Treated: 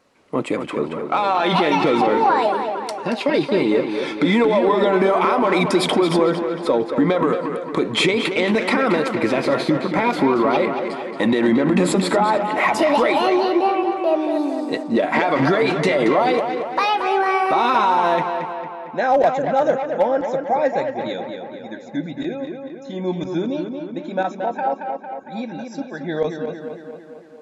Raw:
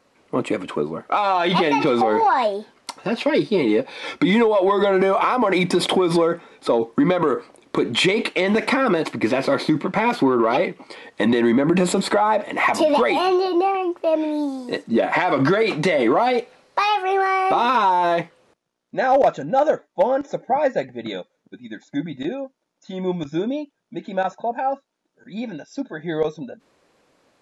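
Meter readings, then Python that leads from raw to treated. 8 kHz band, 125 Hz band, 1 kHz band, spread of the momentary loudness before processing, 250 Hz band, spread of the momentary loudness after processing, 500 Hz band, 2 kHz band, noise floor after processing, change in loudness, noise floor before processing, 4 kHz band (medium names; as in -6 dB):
+0.5 dB, +1.0 dB, +1.0 dB, 14 LU, +1.0 dB, 12 LU, +1.0 dB, +1.0 dB, -36 dBFS, +1.0 dB, -72 dBFS, +0.5 dB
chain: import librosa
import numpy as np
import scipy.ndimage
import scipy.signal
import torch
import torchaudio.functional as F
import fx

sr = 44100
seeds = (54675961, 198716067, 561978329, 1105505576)

y = fx.echo_tape(x, sr, ms=227, feedback_pct=67, wet_db=-4.0, lp_hz=3200.0, drive_db=14.0, wow_cents=11)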